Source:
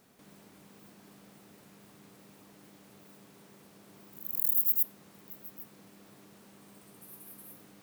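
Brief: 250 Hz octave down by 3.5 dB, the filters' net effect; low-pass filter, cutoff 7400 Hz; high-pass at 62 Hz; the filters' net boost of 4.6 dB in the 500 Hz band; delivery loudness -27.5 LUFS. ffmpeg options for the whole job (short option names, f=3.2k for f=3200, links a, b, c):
-af "highpass=62,lowpass=7.4k,equalizer=f=250:t=o:g=-7,equalizer=f=500:t=o:g=8,volume=25.5dB"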